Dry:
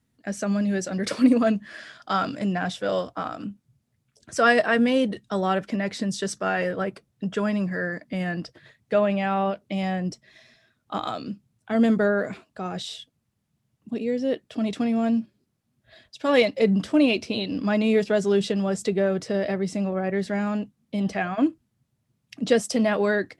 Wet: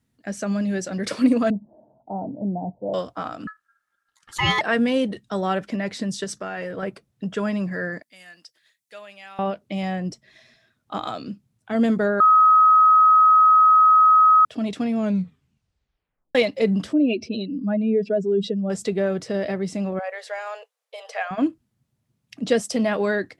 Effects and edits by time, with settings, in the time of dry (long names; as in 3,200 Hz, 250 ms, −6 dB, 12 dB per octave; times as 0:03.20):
0:01.50–0:02.94: Chebyshev low-pass with heavy ripple 920 Hz, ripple 3 dB
0:03.47–0:04.61: ring modulation 1,500 Hz
0:06.24–0:06.83: downward compressor, threshold −26 dBFS
0:08.02–0:09.39: first difference
0:12.20–0:14.45: beep over 1,270 Hz −10.5 dBFS
0:14.96: tape stop 1.39 s
0:16.93–0:18.70: expanding power law on the bin magnitudes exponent 1.8
0:19.99–0:21.31: linear-phase brick-wall high-pass 430 Hz